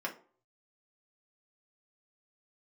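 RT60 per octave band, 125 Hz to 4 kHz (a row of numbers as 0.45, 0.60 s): 0.75, 0.45, 0.45, 0.45, 0.30, 0.25 s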